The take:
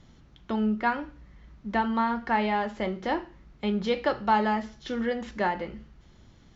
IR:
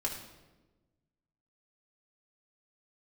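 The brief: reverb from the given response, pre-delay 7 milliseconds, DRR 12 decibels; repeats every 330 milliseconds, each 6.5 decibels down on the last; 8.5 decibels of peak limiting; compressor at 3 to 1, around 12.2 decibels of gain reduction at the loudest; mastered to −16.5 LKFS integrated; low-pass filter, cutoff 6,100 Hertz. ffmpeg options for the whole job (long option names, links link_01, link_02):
-filter_complex "[0:a]lowpass=6100,acompressor=threshold=-36dB:ratio=3,alimiter=level_in=5.5dB:limit=-24dB:level=0:latency=1,volume=-5.5dB,aecho=1:1:330|660|990|1320|1650|1980:0.473|0.222|0.105|0.0491|0.0231|0.0109,asplit=2[link_01][link_02];[1:a]atrim=start_sample=2205,adelay=7[link_03];[link_02][link_03]afir=irnorm=-1:irlink=0,volume=-15dB[link_04];[link_01][link_04]amix=inputs=2:normalize=0,volume=23dB"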